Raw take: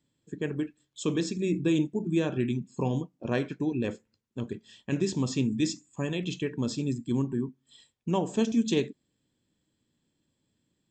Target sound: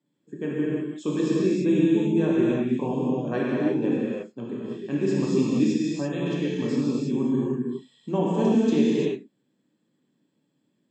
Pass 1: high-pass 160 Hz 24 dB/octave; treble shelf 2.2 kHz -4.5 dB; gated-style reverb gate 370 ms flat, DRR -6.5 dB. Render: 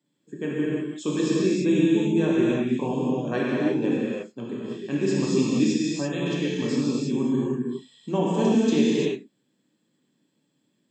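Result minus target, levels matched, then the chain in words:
4 kHz band +5.0 dB
high-pass 160 Hz 24 dB/octave; treble shelf 2.2 kHz -12 dB; gated-style reverb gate 370 ms flat, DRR -6.5 dB

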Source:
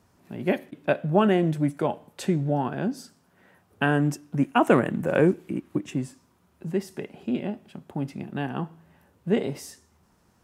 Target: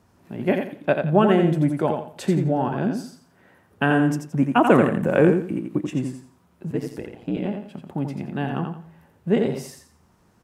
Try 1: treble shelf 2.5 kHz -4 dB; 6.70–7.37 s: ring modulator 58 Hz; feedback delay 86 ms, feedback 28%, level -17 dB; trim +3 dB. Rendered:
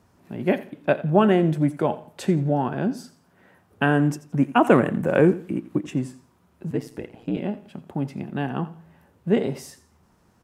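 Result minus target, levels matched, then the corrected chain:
echo-to-direct -11.5 dB
treble shelf 2.5 kHz -4 dB; 6.70–7.37 s: ring modulator 58 Hz; feedback delay 86 ms, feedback 28%, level -5.5 dB; trim +3 dB

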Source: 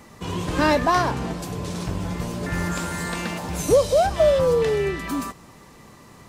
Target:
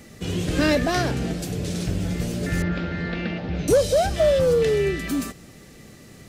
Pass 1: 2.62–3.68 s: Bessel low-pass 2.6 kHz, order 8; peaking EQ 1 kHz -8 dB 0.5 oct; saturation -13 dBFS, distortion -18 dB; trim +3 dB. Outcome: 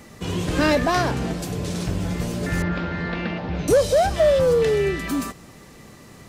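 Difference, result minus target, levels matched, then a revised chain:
1 kHz band +3.5 dB
2.62–3.68 s: Bessel low-pass 2.6 kHz, order 8; peaking EQ 1 kHz -20 dB 0.5 oct; saturation -13 dBFS, distortion -20 dB; trim +3 dB

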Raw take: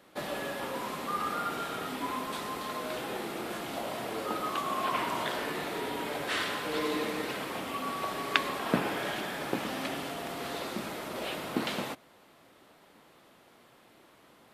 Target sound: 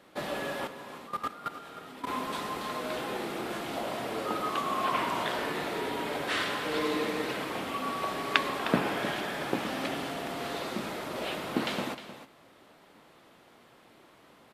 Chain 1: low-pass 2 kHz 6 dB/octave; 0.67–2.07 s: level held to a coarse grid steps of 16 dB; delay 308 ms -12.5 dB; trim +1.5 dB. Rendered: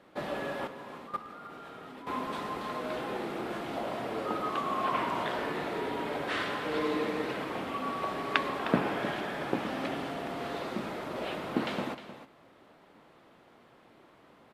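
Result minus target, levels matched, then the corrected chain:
8 kHz band -7.5 dB
low-pass 7.8 kHz 6 dB/octave; 0.67–2.07 s: level held to a coarse grid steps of 16 dB; delay 308 ms -12.5 dB; trim +1.5 dB

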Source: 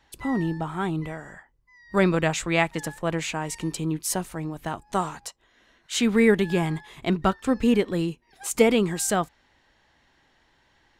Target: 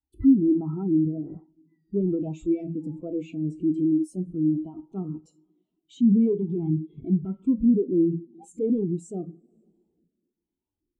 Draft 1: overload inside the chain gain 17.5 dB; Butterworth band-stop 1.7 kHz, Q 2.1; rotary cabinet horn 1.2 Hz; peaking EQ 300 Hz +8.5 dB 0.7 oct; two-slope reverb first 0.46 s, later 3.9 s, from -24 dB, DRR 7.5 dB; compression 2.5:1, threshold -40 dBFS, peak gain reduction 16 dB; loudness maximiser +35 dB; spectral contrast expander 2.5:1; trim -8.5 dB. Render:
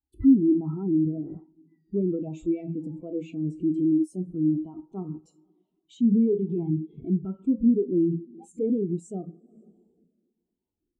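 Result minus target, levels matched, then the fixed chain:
overload inside the chain: distortion -6 dB
overload inside the chain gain 24 dB; Butterworth band-stop 1.7 kHz, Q 2.1; rotary cabinet horn 1.2 Hz; peaking EQ 300 Hz +8.5 dB 0.7 oct; two-slope reverb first 0.46 s, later 3.9 s, from -24 dB, DRR 7.5 dB; compression 2.5:1, threshold -40 dBFS, peak gain reduction 14 dB; loudness maximiser +35 dB; spectral contrast expander 2.5:1; trim -8.5 dB

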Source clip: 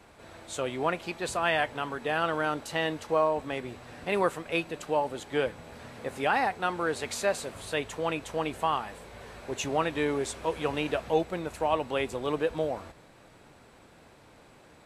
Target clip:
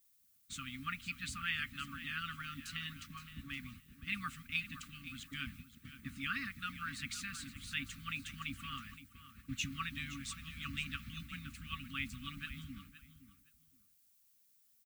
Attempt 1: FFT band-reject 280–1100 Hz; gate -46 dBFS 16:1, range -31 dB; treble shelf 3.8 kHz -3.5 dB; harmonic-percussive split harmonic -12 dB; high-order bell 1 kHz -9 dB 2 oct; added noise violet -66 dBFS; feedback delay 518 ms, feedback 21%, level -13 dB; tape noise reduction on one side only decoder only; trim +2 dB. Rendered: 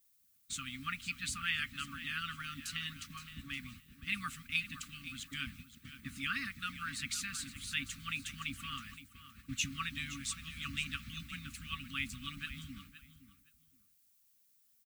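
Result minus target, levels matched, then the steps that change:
8 kHz band +4.0 dB
change: treble shelf 3.8 kHz -12 dB

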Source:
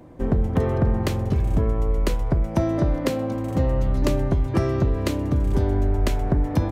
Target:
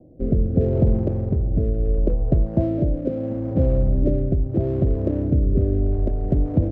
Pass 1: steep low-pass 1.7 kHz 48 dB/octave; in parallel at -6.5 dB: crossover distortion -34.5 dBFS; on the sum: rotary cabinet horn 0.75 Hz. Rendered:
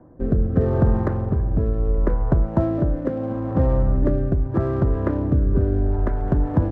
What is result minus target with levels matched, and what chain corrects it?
2 kHz band +14.0 dB
steep low-pass 680 Hz 48 dB/octave; in parallel at -6.5 dB: crossover distortion -34.5 dBFS; on the sum: rotary cabinet horn 0.75 Hz

